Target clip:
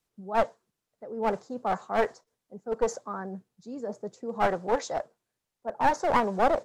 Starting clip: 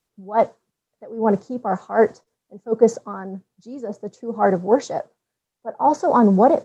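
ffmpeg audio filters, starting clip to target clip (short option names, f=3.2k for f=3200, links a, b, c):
-filter_complex "[0:a]acrossover=split=530[a][b];[a]acompressor=threshold=-32dB:ratio=6[c];[c][b]amix=inputs=2:normalize=0,aeval=exprs='clip(val(0),-1,0.0794)':c=same,volume=-3dB"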